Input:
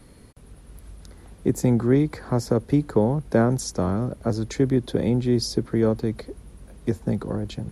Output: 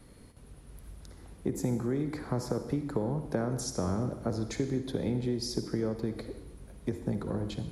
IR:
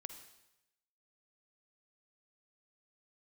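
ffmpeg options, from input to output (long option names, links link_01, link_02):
-filter_complex "[0:a]acompressor=threshold=-22dB:ratio=6[link_01];[1:a]atrim=start_sample=2205[link_02];[link_01][link_02]afir=irnorm=-1:irlink=0"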